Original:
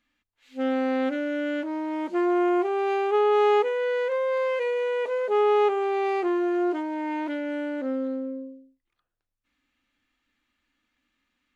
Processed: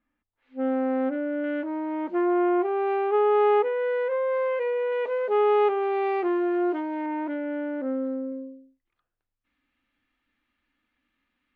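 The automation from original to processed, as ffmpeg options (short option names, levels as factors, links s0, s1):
-af "asetnsamples=n=441:p=0,asendcmd='1.44 lowpass f 2000;4.92 lowpass f 2900;7.06 lowpass f 1700;8.32 lowpass f 3100',lowpass=1300"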